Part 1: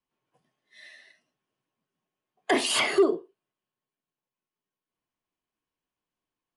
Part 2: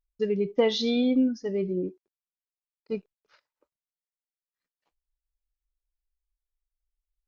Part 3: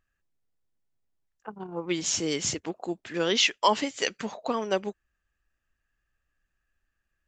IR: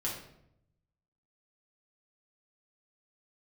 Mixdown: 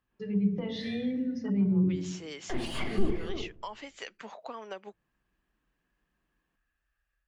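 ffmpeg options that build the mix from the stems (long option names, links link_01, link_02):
-filter_complex "[0:a]highpass=190,alimiter=limit=-20dB:level=0:latency=1:release=53,aeval=exprs='clip(val(0),-1,0.0398)':channel_layout=same,volume=0dB,asplit=3[link_01][link_02][link_03];[link_02]volume=-13dB[link_04];[link_03]volume=-13dB[link_05];[1:a]highpass=46,equalizer=frequency=100:width=1.8:gain=11.5,alimiter=limit=-19.5dB:level=0:latency=1:release=415,volume=1dB,asplit=2[link_06][link_07];[link_07]volume=-15.5dB[link_08];[2:a]volume=-5dB,asplit=2[link_09][link_10];[link_10]apad=whole_len=289322[link_11];[link_01][link_11]sidechaincompress=threshold=-50dB:ratio=8:attack=16:release=125[link_12];[link_06][link_09]amix=inputs=2:normalize=0,highpass=630,acompressor=threshold=-47dB:ratio=2,volume=0dB[link_13];[3:a]atrim=start_sample=2205[link_14];[link_04][link_08]amix=inputs=2:normalize=0[link_15];[link_15][link_14]afir=irnorm=-1:irlink=0[link_16];[link_05]aecho=0:1:310:1[link_17];[link_12][link_13][link_16][link_17]amix=inputs=4:normalize=0,dynaudnorm=framelen=230:gausssize=3:maxgain=4.5dB,bass=frequency=250:gain=15,treble=frequency=4000:gain=-10,acrossover=split=240[link_18][link_19];[link_19]acompressor=threshold=-36dB:ratio=4[link_20];[link_18][link_20]amix=inputs=2:normalize=0"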